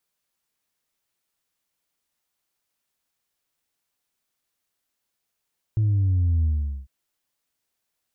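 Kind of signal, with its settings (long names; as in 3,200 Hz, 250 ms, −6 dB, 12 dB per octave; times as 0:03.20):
bass drop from 110 Hz, over 1.10 s, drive 1 dB, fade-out 0.43 s, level −18 dB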